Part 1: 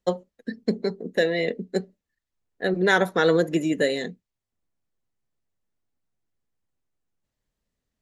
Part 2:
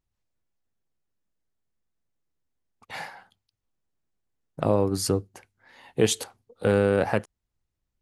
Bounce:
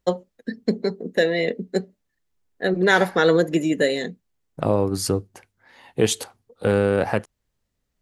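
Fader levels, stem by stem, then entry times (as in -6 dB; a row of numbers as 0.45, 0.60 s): +2.5, +2.0 dB; 0.00, 0.00 s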